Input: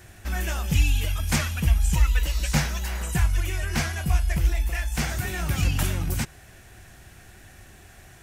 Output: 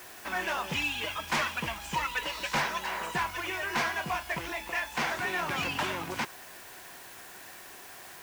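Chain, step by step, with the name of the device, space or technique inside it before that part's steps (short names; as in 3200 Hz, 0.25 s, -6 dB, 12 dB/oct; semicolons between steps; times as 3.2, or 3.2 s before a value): drive-through speaker (BPF 370–3500 Hz; bell 1000 Hz +10 dB 0.25 oct; hard clip -26.5 dBFS, distortion -13 dB; white noise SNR 16 dB); gain +2.5 dB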